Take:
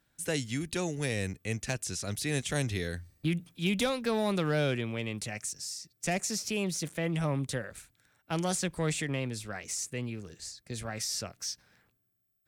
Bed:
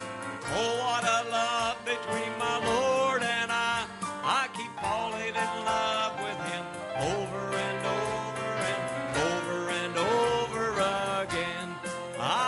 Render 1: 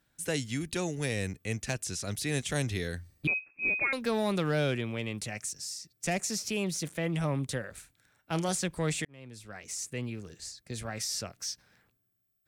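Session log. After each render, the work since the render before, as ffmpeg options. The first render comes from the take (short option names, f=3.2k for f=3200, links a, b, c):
-filter_complex "[0:a]asettb=1/sr,asplit=3[a][b][c];[a]atrim=end=3.274[d];[b]atrim=start=3.27:end=3.93,asetpts=PTS-STARTPTS,afade=t=in:d=0.004:c=qsin,afade=t=out:st=0.656:d=0.004:c=qsin,lowpass=f=2.3k:t=q:w=0.5098,lowpass=f=2.3k:t=q:w=0.6013,lowpass=f=2.3k:t=q:w=0.9,lowpass=f=2.3k:t=q:w=2.563,afreqshift=-2700[e];[c]atrim=start=3.926[f];[d][e]acrossfade=d=0.004:c1=hsin:c2=qsin[g];[g][f]acrossfade=d=0.004:c1=qsin:c2=hsin,asettb=1/sr,asplit=3[h][i][j];[h]atrim=end=7.704[k];[i]atrim=start=7.7:end=8.49,asetpts=PTS-STARTPTS,afade=t=in:d=0.004:c=qsin,afade=t=out:st=0.786:d=0.004:c=qsin,asplit=2[l][m];[m]adelay=31,volume=-13.5dB[n];[l][n]amix=inputs=2:normalize=0,atrim=end_sample=34839[o];[j]atrim=start=8.486[p];[k][o]acrossfade=d=0.004:c1=hsin:c2=qsin[q];[q][p]acrossfade=d=0.004:c1=qsin:c2=hsin,asplit=2[r][s];[r]atrim=end=9.05,asetpts=PTS-STARTPTS,afade=t=out:st=9.046:d=0.004:c=hsin[t];[s]atrim=start=9.05,asetpts=PTS-STARTPTS,afade=t=in:d=0.93[u];[t][u]concat=n=2:v=0:a=1"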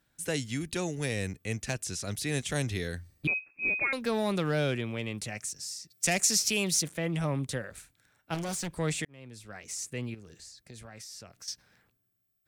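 -filter_complex "[0:a]asettb=1/sr,asplit=3[a][b][c];[a]atrim=end=5.904[d];[b]atrim=start=5.9:end=6.82,asetpts=PTS-STARTPTS,afade=t=in:d=0.004:c=qsin,afade=t=out:st=0.916:d=0.004:c=qsin,highshelf=f=2k:g=10[e];[c]atrim=start=6.816[f];[d][e]acrossfade=d=0.004:c1=hsin:c2=qsin[g];[g][f]acrossfade=d=0.004:c1=qsin:c2=hsin,asettb=1/sr,asplit=3[h][i][j];[h]atrim=end=8.344[k];[i]atrim=start=8.34:end=8.75,asetpts=PTS-STARTPTS,afade=t=in:d=0.004:c=qsin,afade=t=out:st=0.406:d=0.004:c=qsin,asoftclip=type=hard:threshold=-31.5dB[l];[j]atrim=start=8.746[m];[k][l]acrossfade=d=0.004:c1=hsin:c2=qsin[n];[n][m]acrossfade=d=0.004:c1=qsin:c2=hsin,asettb=1/sr,asplit=3[o][p][q];[o]atrim=end=10.144[r];[p]atrim=start=10.14:end=11.48,asetpts=PTS-STARTPTS,afade=t=in:d=0.004:c=qsin,afade=t=out:st=1.336:d=0.004:c=qsin,acompressor=threshold=-48dB:ratio=2.5:attack=3.2:release=140:knee=1:detection=peak[s];[q]atrim=start=11.476[t];[r][s]acrossfade=d=0.004:c1=hsin:c2=qsin[u];[u][t]acrossfade=d=0.004:c1=qsin:c2=hsin"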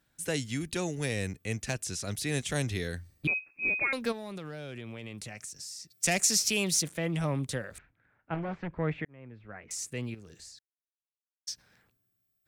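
-filter_complex "[0:a]asplit=3[a][b][c];[a]afade=t=out:st=4.11:d=0.02[d];[b]acompressor=threshold=-38dB:ratio=5:attack=3.2:release=140:knee=1:detection=peak,afade=t=in:st=4.11:d=0.02,afade=t=out:st=5.89:d=0.02[e];[c]afade=t=in:st=5.89:d=0.02[f];[d][e][f]amix=inputs=3:normalize=0,asettb=1/sr,asplit=3[g][h][i];[g]atrim=end=7.784[j];[h]atrim=start=7.78:end=9.71,asetpts=PTS-STARTPTS,afade=t=in:d=0.004:c=qsin,afade=t=out:st=1.926:d=0.004:c=qsin,lowpass=f=2.2k:w=0.5412,lowpass=f=2.2k:w=1.3066[k];[i]atrim=start=9.706[l];[j][k]acrossfade=d=0.004:c1=hsin:c2=qsin[m];[m][l]acrossfade=d=0.004:c1=qsin:c2=hsin,asplit=3[n][o][p];[n]atrim=end=10.59,asetpts=PTS-STARTPTS,afade=t=out:st=10.586:d=0.004:c=hsin[q];[o]atrim=start=10.59:end=11.47,asetpts=PTS-STARTPTS,volume=0[r];[p]atrim=start=11.47,asetpts=PTS-STARTPTS,afade=t=in:d=0.004:c=hsin[s];[q][r][s]concat=n=3:v=0:a=1"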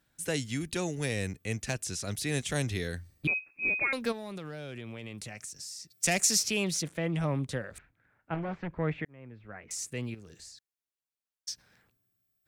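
-filter_complex "[0:a]asettb=1/sr,asplit=3[a][b][c];[a]atrim=end=6.434[d];[b]atrim=start=6.43:end=7.76,asetpts=PTS-STARTPTS,afade=t=in:d=0.004:c=qsin,afade=t=out:st=1.326:d=0.004:c=qsin,aemphasis=mode=reproduction:type=cd[e];[c]atrim=start=7.756[f];[d][e]acrossfade=d=0.004:c1=hsin:c2=qsin[g];[g][f]acrossfade=d=0.004:c1=qsin:c2=hsin"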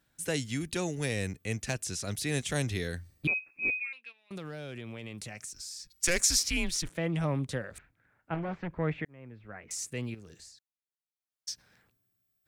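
-filter_complex "[0:a]asettb=1/sr,asplit=3[a][b][c];[a]atrim=end=3.704[d];[b]atrim=start=3.7:end=4.31,asetpts=PTS-STARTPTS,afade=t=in:d=0.004:c=qsin,afade=t=out:st=0.606:d=0.004:c=qsin,bandpass=f=2.6k:t=q:w=10[e];[c]atrim=start=4.306[f];[d][e]acrossfade=d=0.004:c1=hsin:c2=qsin[g];[g][f]acrossfade=d=0.004:c1=qsin:c2=hsin,asettb=1/sr,asplit=3[h][i][j];[h]atrim=end=5.534[k];[i]atrim=start=5.53:end=6.9,asetpts=PTS-STARTPTS,afade=t=in:d=0.004:c=qsin,afade=t=out:st=1.366:d=0.004:c=qsin,afreqshift=-170[l];[j]atrim=start=6.896[m];[k][l]acrossfade=d=0.004:c1=hsin:c2=qsin[n];[n][m]acrossfade=d=0.004:c1=qsin:c2=hsin,asplit=3[o][p][q];[o]atrim=end=10.7,asetpts=PTS-STARTPTS,afade=t=out:st=10.32:d=0.38:silence=0.298538[r];[p]atrim=start=10.7:end=11.11,asetpts=PTS-STARTPTS,volume=-10.5dB[s];[q]atrim=start=11.11,asetpts=PTS-STARTPTS,afade=t=in:d=0.38:silence=0.298538[t];[r][s][t]concat=n=3:v=0:a=1"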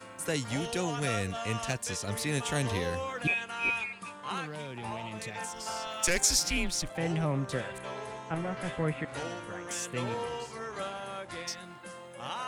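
-filter_complex "[1:a]volume=-10dB[a];[0:a][a]amix=inputs=2:normalize=0"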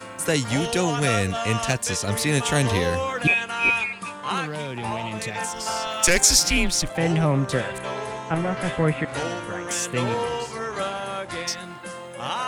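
-af "volume=9.5dB,alimiter=limit=-2dB:level=0:latency=1"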